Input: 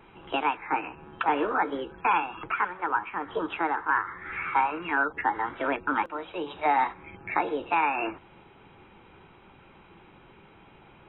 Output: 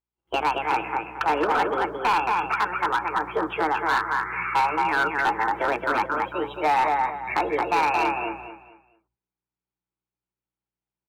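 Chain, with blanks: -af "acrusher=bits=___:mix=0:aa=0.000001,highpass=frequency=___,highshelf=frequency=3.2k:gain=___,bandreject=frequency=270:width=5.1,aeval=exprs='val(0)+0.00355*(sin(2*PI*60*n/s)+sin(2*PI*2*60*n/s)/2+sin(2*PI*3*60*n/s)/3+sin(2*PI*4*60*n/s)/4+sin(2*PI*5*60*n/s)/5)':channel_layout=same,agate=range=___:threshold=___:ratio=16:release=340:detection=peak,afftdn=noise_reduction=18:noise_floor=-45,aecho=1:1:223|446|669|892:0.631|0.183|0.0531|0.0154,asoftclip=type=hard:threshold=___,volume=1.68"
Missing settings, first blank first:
8, 160, -4, 0.0251, 0.00794, 0.0891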